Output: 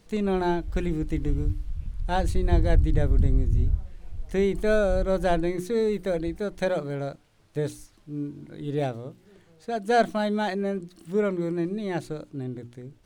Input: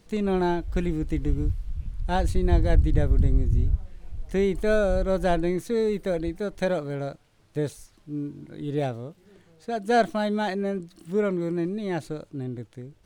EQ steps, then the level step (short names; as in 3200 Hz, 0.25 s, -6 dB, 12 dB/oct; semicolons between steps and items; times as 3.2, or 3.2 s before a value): notches 60/120/180/240/300/360 Hz; 0.0 dB